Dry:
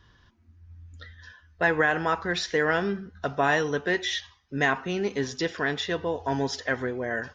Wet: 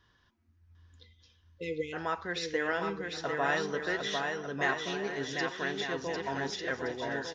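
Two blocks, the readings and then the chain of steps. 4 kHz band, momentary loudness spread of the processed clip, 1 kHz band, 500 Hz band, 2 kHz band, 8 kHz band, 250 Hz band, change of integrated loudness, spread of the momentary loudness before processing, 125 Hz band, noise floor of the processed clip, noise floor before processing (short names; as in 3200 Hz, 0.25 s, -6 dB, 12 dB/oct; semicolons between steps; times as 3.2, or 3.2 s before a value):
-5.0 dB, 5 LU, -6.0 dB, -6.5 dB, -6.5 dB, n/a, -7.5 dB, -6.5 dB, 9 LU, -9.0 dB, -68 dBFS, -60 dBFS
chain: spectral delete 0.77–1.93, 540–2000 Hz; low shelf 200 Hz -6.5 dB; on a send: bouncing-ball echo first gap 0.75 s, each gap 0.6×, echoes 5; on the sum: gain -7 dB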